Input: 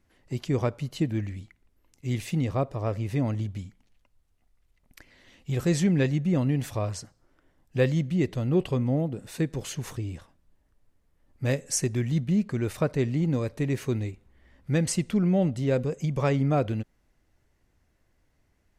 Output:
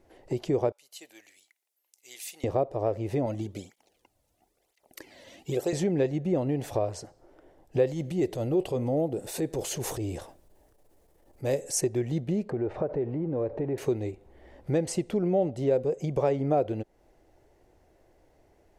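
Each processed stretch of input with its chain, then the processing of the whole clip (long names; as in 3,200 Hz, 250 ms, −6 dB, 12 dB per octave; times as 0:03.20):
0:00.72–0:02.44: high-pass filter 920 Hz 6 dB per octave + first difference
0:03.26–0:05.73: high-shelf EQ 3,600 Hz +10 dB + through-zero flanger with one copy inverted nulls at 1 Hz, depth 2.8 ms
0:07.87–0:11.81: high-shelf EQ 5,200 Hz +12 dB + transient designer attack −10 dB, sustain +2 dB
0:12.50–0:13.78: mu-law and A-law mismatch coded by mu + low-pass filter 1,600 Hz + downward compressor 4 to 1, threshold −29 dBFS
whole clip: flat-topped bell 530 Hz +12 dB; downward compressor 2 to 1, threshold −35 dBFS; level +3 dB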